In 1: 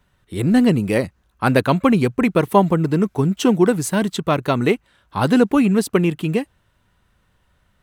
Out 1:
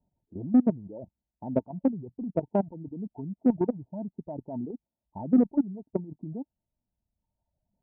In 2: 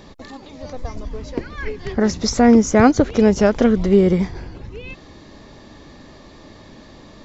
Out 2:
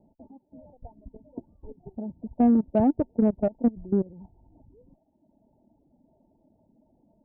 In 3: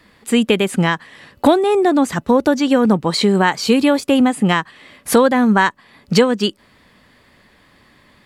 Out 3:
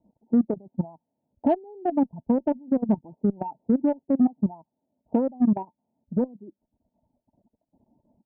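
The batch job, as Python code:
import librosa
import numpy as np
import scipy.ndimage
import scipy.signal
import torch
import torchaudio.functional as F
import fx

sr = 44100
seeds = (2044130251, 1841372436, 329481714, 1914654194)

y = fx.level_steps(x, sr, step_db=13)
y = scipy.signal.sosfilt(scipy.signal.cheby1(6, 9, 930.0, 'lowpass', fs=sr, output='sos'), y)
y = fx.dereverb_blind(y, sr, rt60_s=1.4)
y = fx.cheby_harmonics(y, sr, harmonics=(3, 7), levels_db=(-30, -36), full_scale_db=-8.5)
y = y * librosa.db_to_amplitude(-2.0)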